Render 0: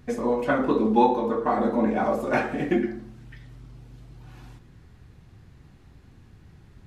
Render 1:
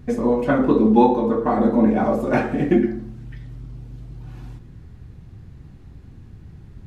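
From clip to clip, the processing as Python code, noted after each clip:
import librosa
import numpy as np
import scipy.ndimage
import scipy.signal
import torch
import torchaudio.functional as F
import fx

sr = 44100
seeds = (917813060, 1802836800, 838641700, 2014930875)

y = fx.low_shelf(x, sr, hz=420.0, db=10.0)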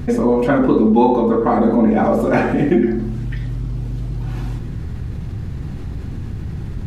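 y = fx.env_flatten(x, sr, amount_pct=50)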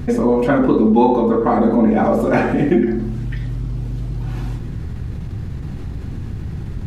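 y = fx.end_taper(x, sr, db_per_s=130.0)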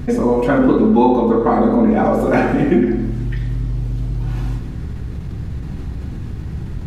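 y = fx.rev_gated(x, sr, seeds[0], gate_ms=470, shape='falling', drr_db=8.0)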